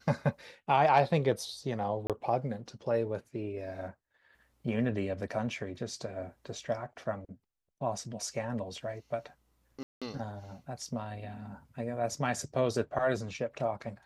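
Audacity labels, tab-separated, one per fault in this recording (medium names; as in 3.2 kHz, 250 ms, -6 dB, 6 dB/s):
2.070000	2.100000	dropout 27 ms
9.830000	10.020000	dropout 186 ms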